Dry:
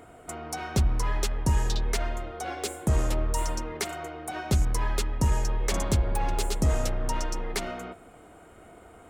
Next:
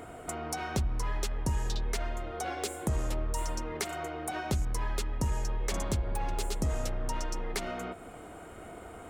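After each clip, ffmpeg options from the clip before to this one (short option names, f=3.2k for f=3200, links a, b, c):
-af "acompressor=threshold=-41dB:ratio=2,volume=4.5dB"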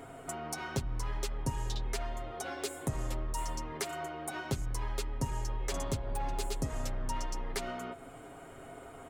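-af "aecho=1:1:7.4:0.65,volume=-4dB"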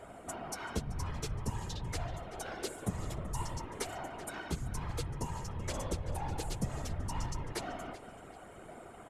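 -filter_complex "[0:a]asplit=2[a][b];[b]adelay=383,lowpass=f=5k:p=1,volume=-13dB,asplit=2[c][d];[d]adelay=383,lowpass=f=5k:p=1,volume=0.38,asplit=2[e][f];[f]adelay=383,lowpass=f=5k:p=1,volume=0.38,asplit=2[g][h];[h]adelay=383,lowpass=f=5k:p=1,volume=0.38[i];[a][c][e][g][i]amix=inputs=5:normalize=0,afftfilt=real='hypot(re,im)*cos(2*PI*random(0))':imag='hypot(re,im)*sin(2*PI*random(1))':win_size=512:overlap=0.75,volume=3.5dB" -ar 44100 -c:a mp2 -b:a 192k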